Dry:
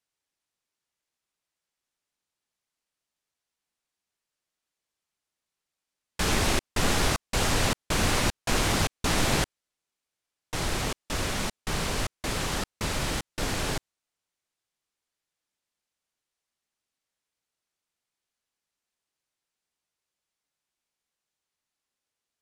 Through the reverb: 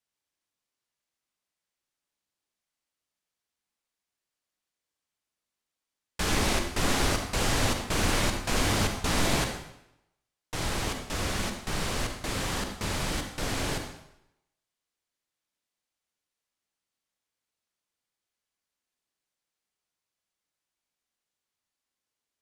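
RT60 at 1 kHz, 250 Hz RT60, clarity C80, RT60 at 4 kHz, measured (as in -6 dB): 0.80 s, 0.80 s, 8.0 dB, 0.75 s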